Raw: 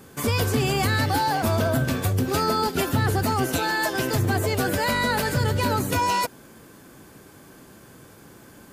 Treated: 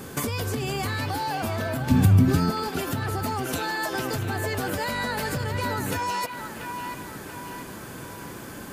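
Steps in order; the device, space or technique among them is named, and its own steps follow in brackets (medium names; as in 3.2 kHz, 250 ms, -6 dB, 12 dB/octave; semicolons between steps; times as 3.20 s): serial compression, leveller first (compression, threshold -27 dBFS, peak gain reduction 9 dB; compression, threshold -34 dBFS, peak gain reduction 8.5 dB); 1.90–2.51 s: resonant low shelf 330 Hz +12 dB, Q 1.5; feedback echo behind a band-pass 686 ms, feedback 49%, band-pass 1.6 kHz, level -5 dB; trim +8.5 dB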